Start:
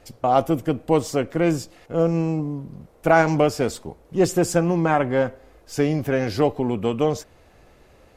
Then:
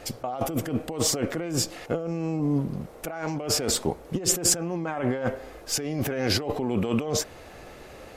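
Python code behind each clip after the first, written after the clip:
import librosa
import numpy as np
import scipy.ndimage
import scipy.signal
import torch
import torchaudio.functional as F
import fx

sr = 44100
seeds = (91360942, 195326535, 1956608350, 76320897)

y = fx.notch(x, sr, hz=990.0, q=22.0)
y = fx.over_compress(y, sr, threshold_db=-29.0, ratio=-1.0)
y = fx.low_shelf(y, sr, hz=160.0, db=-7.5)
y = F.gain(torch.from_numpy(y), 3.0).numpy()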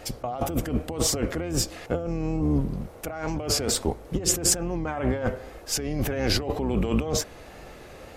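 y = fx.octave_divider(x, sr, octaves=2, level_db=-2.0)
y = fx.wow_flutter(y, sr, seeds[0], rate_hz=2.1, depth_cents=50.0)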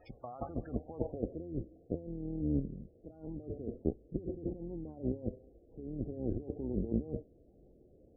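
y = fx.cheby_harmonics(x, sr, harmonics=(3,), levels_db=(-11,), full_scale_db=-8.5)
y = fx.filter_sweep_lowpass(y, sr, from_hz=2600.0, to_hz=360.0, start_s=0.24, end_s=1.47, q=1.4)
y = fx.spec_topn(y, sr, count=32)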